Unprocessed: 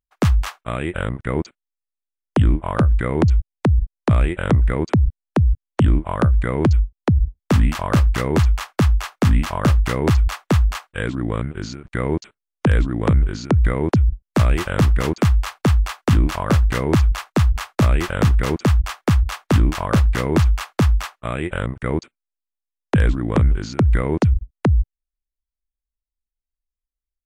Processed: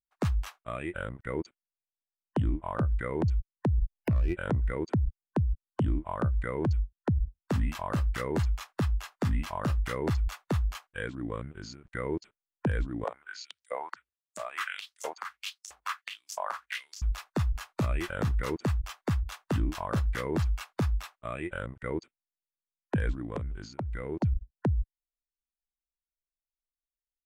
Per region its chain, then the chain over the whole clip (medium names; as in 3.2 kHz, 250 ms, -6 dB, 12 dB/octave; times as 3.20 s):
3.78–4.36 s: self-modulated delay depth 0.28 ms + bass shelf 300 Hz +10 dB
13.04–17.02 s: compression 4:1, threshold -16 dBFS + LFO high-pass saw up 1.5 Hz 540–7200 Hz
23.23–24.23 s: expander -28 dBFS + compression 2.5:1, threshold -19 dBFS
whole clip: spectral noise reduction 7 dB; peak limiter -12.5 dBFS; trim -8 dB